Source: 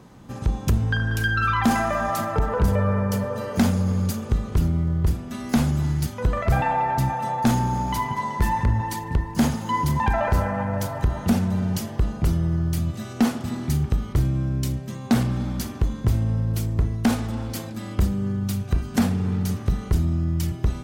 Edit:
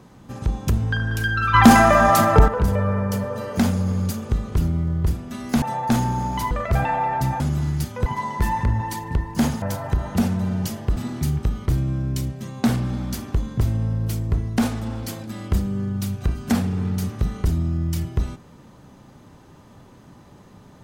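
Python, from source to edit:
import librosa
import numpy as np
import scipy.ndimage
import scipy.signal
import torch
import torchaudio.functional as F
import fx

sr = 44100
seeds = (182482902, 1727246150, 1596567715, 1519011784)

y = fx.edit(x, sr, fx.clip_gain(start_s=1.54, length_s=0.94, db=9.5),
    fx.swap(start_s=5.62, length_s=0.66, other_s=7.17, other_length_s=0.89),
    fx.cut(start_s=9.62, length_s=1.11),
    fx.cut(start_s=12.07, length_s=1.36), tone=tone)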